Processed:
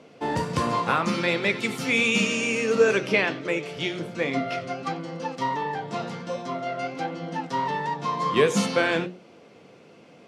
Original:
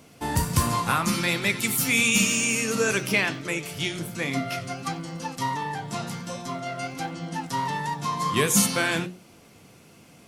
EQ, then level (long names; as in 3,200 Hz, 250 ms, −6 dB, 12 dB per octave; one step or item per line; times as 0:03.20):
band-pass filter 160–4,000 Hz
parametric band 490 Hz +8 dB 0.83 octaves
0.0 dB